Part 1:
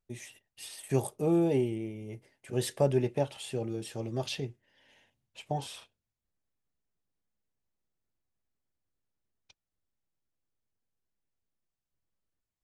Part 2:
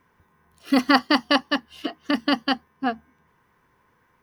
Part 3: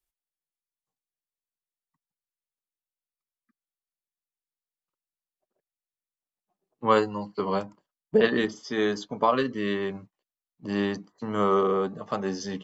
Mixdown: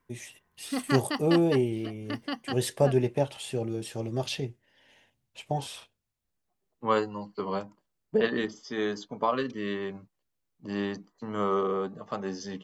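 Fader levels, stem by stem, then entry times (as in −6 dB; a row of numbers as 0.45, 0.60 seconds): +3.0, −12.5, −4.5 decibels; 0.00, 0.00, 0.00 seconds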